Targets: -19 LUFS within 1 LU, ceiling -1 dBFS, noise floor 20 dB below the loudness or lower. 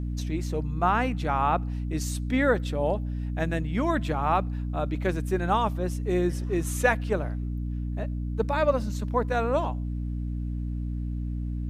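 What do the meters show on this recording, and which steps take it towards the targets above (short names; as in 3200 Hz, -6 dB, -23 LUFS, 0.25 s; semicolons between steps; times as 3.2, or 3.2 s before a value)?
hum 60 Hz; harmonics up to 300 Hz; hum level -28 dBFS; loudness -28.0 LUFS; peak -8.5 dBFS; loudness target -19.0 LUFS
-> de-hum 60 Hz, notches 5; gain +9 dB; limiter -1 dBFS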